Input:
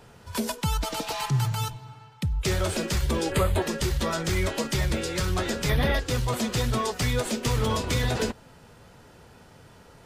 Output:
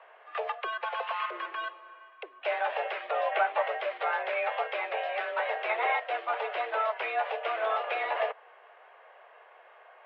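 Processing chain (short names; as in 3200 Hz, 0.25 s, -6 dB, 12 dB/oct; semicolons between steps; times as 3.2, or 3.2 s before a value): mistuned SSB +220 Hz 290–2600 Hz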